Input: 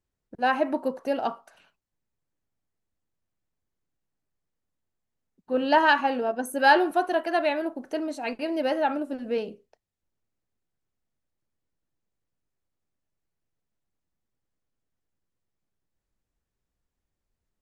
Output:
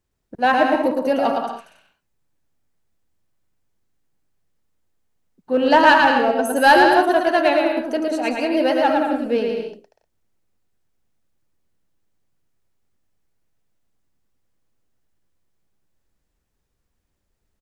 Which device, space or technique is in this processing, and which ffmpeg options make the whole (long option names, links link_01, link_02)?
parallel distortion: -filter_complex "[0:a]aecho=1:1:110|187|240.9|278.6|305:0.631|0.398|0.251|0.158|0.1,asplit=2[link_01][link_02];[link_02]asoftclip=type=hard:threshold=-19.5dB,volume=-7dB[link_03];[link_01][link_03]amix=inputs=2:normalize=0,volume=3.5dB"